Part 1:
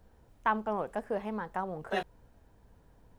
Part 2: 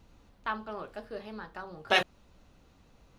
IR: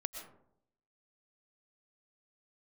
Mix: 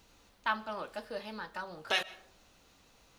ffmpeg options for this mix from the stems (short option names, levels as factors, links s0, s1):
-filter_complex "[0:a]highpass=f=150:w=0.5412,highpass=f=150:w=1.3066,volume=0.266[s0];[1:a]tiltshelf=f=1500:g=-4.5,volume=1.12,asplit=2[s1][s2];[s2]volume=0.133[s3];[2:a]atrim=start_sample=2205[s4];[s3][s4]afir=irnorm=-1:irlink=0[s5];[s0][s1][s5]amix=inputs=3:normalize=0,bass=f=250:g=-6,treble=f=4000:g=2,alimiter=limit=0.168:level=0:latency=1:release=171"